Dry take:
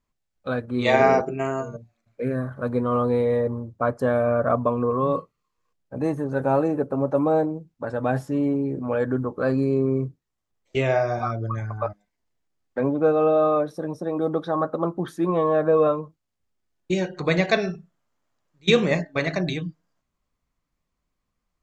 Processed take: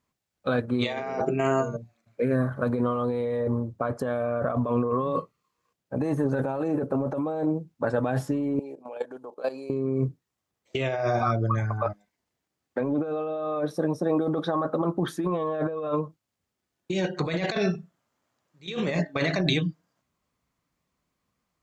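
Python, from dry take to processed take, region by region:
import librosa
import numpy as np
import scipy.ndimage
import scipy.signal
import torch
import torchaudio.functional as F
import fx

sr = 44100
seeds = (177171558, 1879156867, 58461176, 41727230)

y = fx.chain(x, sr, fx.highpass(hz=680.0, slope=12),
    fx.band_shelf(hz=1500.0, db=-11.5, octaves=1.1),
    fx.level_steps(step_db=14), at=(8.59, 9.7))
y = scipy.signal.sosfilt(scipy.signal.butter(2, 85.0, 'highpass', fs=sr, output='sos'), y)
y = fx.dynamic_eq(y, sr, hz=3300.0, q=2.6, threshold_db=-47.0, ratio=4.0, max_db=6)
y = fx.over_compress(y, sr, threshold_db=-26.0, ratio=-1.0)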